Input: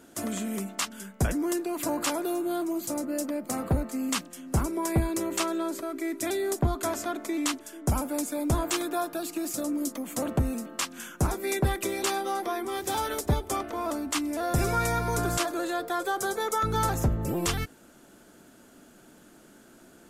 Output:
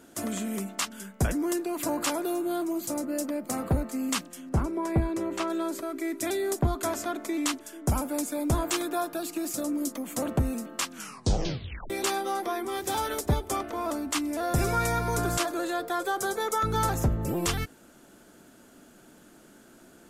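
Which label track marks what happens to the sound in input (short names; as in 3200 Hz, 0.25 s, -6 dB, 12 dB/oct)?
4.490000	5.500000	LPF 2000 Hz 6 dB/oct
10.930000	10.930000	tape stop 0.97 s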